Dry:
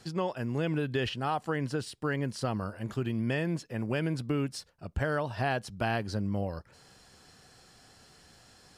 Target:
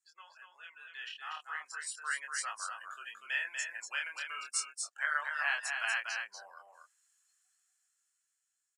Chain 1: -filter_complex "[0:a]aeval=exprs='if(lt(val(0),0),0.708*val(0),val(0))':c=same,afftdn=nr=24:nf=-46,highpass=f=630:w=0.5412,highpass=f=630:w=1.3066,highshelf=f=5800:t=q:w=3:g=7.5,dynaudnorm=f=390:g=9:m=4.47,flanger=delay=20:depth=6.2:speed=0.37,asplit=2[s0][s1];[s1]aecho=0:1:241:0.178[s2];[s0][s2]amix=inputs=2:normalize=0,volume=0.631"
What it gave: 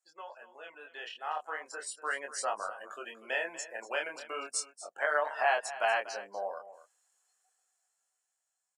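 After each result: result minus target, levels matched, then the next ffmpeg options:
500 Hz band +19.0 dB; echo-to-direct -10 dB
-filter_complex "[0:a]aeval=exprs='if(lt(val(0),0),0.708*val(0),val(0))':c=same,afftdn=nr=24:nf=-46,highpass=f=1300:w=0.5412,highpass=f=1300:w=1.3066,highshelf=f=5800:t=q:w=3:g=7.5,dynaudnorm=f=390:g=9:m=4.47,flanger=delay=20:depth=6.2:speed=0.37,asplit=2[s0][s1];[s1]aecho=0:1:241:0.178[s2];[s0][s2]amix=inputs=2:normalize=0,volume=0.631"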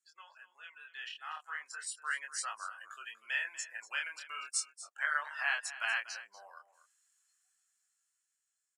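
echo-to-direct -10 dB
-filter_complex "[0:a]aeval=exprs='if(lt(val(0),0),0.708*val(0),val(0))':c=same,afftdn=nr=24:nf=-46,highpass=f=1300:w=0.5412,highpass=f=1300:w=1.3066,highshelf=f=5800:t=q:w=3:g=7.5,dynaudnorm=f=390:g=9:m=4.47,flanger=delay=20:depth=6.2:speed=0.37,asplit=2[s0][s1];[s1]aecho=0:1:241:0.562[s2];[s0][s2]amix=inputs=2:normalize=0,volume=0.631"

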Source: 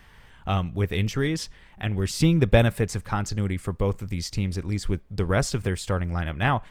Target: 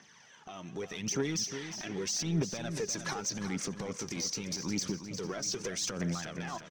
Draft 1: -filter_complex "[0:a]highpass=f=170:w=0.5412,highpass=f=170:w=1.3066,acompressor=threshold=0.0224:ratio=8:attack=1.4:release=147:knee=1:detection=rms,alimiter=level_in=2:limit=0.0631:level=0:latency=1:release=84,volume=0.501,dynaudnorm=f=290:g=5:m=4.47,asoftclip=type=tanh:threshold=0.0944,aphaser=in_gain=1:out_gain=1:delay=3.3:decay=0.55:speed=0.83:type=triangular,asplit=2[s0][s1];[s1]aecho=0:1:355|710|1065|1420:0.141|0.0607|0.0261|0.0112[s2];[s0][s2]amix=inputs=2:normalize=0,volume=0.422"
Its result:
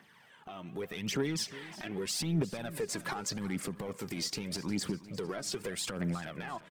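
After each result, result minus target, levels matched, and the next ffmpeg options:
echo-to-direct -7.5 dB; 8 kHz band -4.0 dB
-filter_complex "[0:a]highpass=f=170:w=0.5412,highpass=f=170:w=1.3066,acompressor=threshold=0.0224:ratio=8:attack=1.4:release=147:knee=1:detection=rms,alimiter=level_in=2:limit=0.0631:level=0:latency=1:release=84,volume=0.501,dynaudnorm=f=290:g=5:m=4.47,asoftclip=type=tanh:threshold=0.0944,aphaser=in_gain=1:out_gain=1:delay=3.3:decay=0.55:speed=0.83:type=triangular,asplit=2[s0][s1];[s1]aecho=0:1:355|710|1065|1420|1775:0.335|0.144|0.0619|0.0266|0.0115[s2];[s0][s2]amix=inputs=2:normalize=0,volume=0.422"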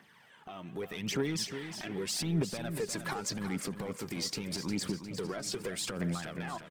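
8 kHz band -4.0 dB
-filter_complex "[0:a]highpass=f=170:w=0.5412,highpass=f=170:w=1.3066,acompressor=threshold=0.0224:ratio=8:attack=1.4:release=147:knee=1:detection=rms,lowpass=f=6000:t=q:w=9.9,alimiter=level_in=2:limit=0.0631:level=0:latency=1:release=84,volume=0.501,dynaudnorm=f=290:g=5:m=4.47,asoftclip=type=tanh:threshold=0.0944,aphaser=in_gain=1:out_gain=1:delay=3.3:decay=0.55:speed=0.83:type=triangular,asplit=2[s0][s1];[s1]aecho=0:1:355|710|1065|1420|1775:0.335|0.144|0.0619|0.0266|0.0115[s2];[s0][s2]amix=inputs=2:normalize=0,volume=0.422"

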